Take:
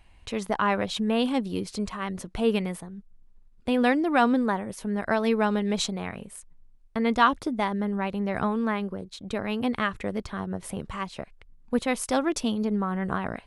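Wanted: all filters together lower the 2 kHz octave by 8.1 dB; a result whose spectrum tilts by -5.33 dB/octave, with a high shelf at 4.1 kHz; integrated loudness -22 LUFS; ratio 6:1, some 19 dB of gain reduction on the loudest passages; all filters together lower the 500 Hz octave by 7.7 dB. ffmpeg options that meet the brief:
-af "equalizer=f=500:t=o:g=-9,equalizer=f=2000:t=o:g=-9,highshelf=f=4100:g=-6,acompressor=threshold=0.00794:ratio=6,volume=14.1"

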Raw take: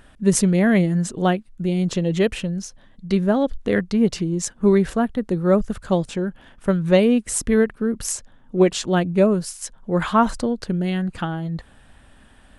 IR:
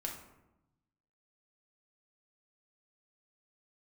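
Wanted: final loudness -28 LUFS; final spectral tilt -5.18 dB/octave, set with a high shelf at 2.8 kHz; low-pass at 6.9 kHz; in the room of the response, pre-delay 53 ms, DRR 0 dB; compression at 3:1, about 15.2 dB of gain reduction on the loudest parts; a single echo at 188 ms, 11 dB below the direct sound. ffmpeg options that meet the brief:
-filter_complex "[0:a]lowpass=6900,highshelf=f=2800:g=6.5,acompressor=threshold=0.0251:ratio=3,aecho=1:1:188:0.282,asplit=2[s0][s1];[1:a]atrim=start_sample=2205,adelay=53[s2];[s1][s2]afir=irnorm=-1:irlink=0,volume=0.944[s3];[s0][s3]amix=inputs=2:normalize=0,volume=1.12"

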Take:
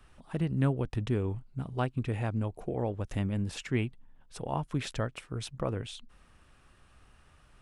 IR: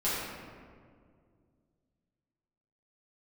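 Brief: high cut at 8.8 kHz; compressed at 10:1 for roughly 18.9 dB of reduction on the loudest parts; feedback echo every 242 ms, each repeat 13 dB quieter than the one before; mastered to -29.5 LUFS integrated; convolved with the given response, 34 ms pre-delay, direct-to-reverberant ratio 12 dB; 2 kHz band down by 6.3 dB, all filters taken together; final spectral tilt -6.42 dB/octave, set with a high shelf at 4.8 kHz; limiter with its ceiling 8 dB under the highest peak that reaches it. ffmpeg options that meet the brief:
-filter_complex "[0:a]lowpass=8800,equalizer=f=2000:t=o:g=-7,highshelf=f=4800:g=-7,acompressor=threshold=0.00794:ratio=10,alimiter=level_in=5.31:limit=0.0631:level=0:latency=1,volume=0.188,aecho=1:1:242|484|726:0.224|0.0493|0.0108,asplit=2[s0][s1];[1:a]atrim=start_sample=2205,adelay=34[s2];[s1][s2]afir=irnorm=-1:irlink=0,volume=0.0841[s3];[s0][s3]amix=inputs=2:normalize=0,volume=9.44"

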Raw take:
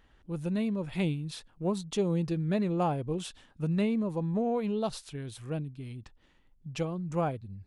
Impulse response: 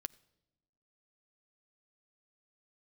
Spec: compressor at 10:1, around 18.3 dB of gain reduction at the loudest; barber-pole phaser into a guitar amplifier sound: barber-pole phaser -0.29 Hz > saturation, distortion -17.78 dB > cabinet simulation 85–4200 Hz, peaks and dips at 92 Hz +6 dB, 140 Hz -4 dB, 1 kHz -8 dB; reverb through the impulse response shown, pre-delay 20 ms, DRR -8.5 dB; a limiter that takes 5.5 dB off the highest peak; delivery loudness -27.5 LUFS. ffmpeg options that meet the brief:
-filter_complex "[0:a]acompressor=threshold=0.00708:ratio=10,alimiter=level_in=5.96:limit=0.0631:level=0:latency=1,volume=0.168,asplit=2[s0][s1];[1:a]atrim=start_sample=2205,adelay=20[s2];[s1][s2]afir=irnorm=-1:irlink=0,volume=3.76[s3];[s0][s3]amix=inputs=2:normalize=0,asplit=2[s4][s5];[s5]afreqshift=-0.29[s6];[s4][s6]amix=inputs=2:normalize=1,asoftclip=threshold=0.0178,highpass=85,equalizer=f=92:t=q:w=4:g=6,equalizer=f=140:t=q:w=4:g=-4,equalizer=f=1000:t=q:w=4:g=-8,lowpass=f=4200:w=0.5412,lowpass=f=4200:w=1.3066,volume=7.5"

